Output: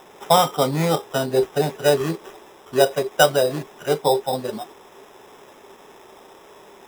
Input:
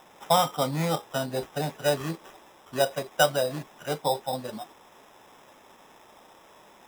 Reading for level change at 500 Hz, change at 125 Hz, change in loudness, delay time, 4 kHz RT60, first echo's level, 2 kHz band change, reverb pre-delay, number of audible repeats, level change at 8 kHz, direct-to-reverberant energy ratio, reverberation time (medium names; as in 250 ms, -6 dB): +8.5 dB, +5.5 dB, +7.0 dB, no echo, no reverb, no echo, +5.5 dB, no reverb, no echo, +5.5 dB, no reverb, no reverb